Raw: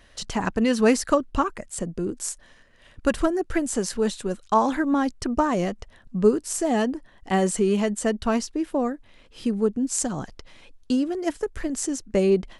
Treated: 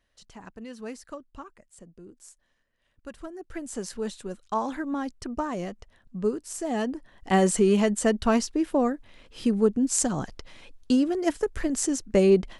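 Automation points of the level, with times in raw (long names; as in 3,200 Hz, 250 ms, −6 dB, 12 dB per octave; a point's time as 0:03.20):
0:03.14 −19.5 dB
0:03.80 −8 dB
0:06.54 −8 dB
0:07.35 +1 dB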